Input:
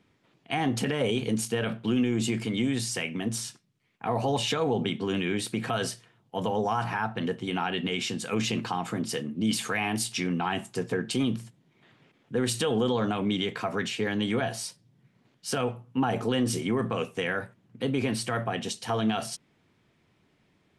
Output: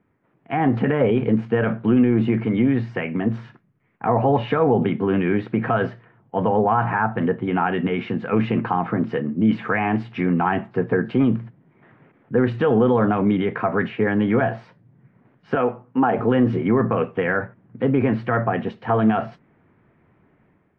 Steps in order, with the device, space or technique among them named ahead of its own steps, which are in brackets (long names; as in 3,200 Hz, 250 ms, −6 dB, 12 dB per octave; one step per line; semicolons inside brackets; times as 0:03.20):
0:15.55–0:16.19: high-pass filter 220 Hz 12 dB per octave
action camera in a waterproof case (low-pass filter 1,900 Hz 24 dB per octave; automatic gain control gain up to 9 dB; AAC 64 kbit/s 24,000 Hz)